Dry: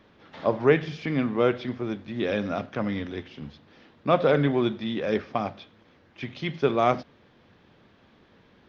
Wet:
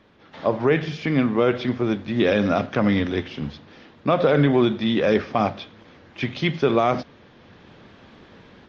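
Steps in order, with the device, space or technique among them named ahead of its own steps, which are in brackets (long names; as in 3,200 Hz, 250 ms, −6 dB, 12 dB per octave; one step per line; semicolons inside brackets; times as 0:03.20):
low-bitrate web radio (automatic gain control gain up to 9 dB; brickwall limiter −9.5 dBFS, peak gain reduction 7.5 dB; level +1.5 dB; MP3 48 kbit/s 24,000 Hz)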